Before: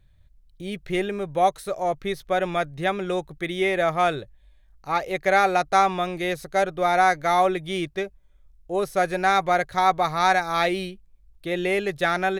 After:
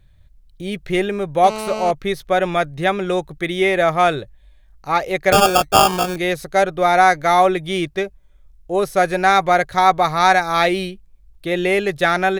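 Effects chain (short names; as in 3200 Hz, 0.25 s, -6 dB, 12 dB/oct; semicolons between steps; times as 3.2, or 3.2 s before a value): 1.44–1.91 GSM buzz -33 dBFS; 5.32–6.16 sample-rate reducer 2000 Hz, jitter 0%; gain +6 dB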